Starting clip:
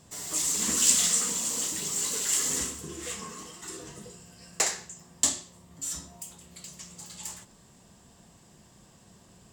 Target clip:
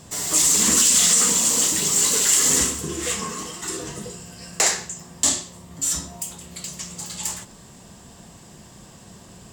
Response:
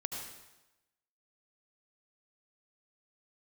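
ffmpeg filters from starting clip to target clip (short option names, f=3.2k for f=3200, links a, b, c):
-af "alimiter=level_in=16.5dB:limit=-1dB:release=50:level=0:latency=1,volume=-5.5dB"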